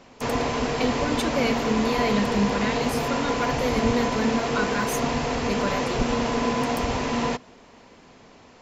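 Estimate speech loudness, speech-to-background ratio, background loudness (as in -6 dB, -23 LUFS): -28.0 LUFS, -2.5 dB, -25.5 LUFS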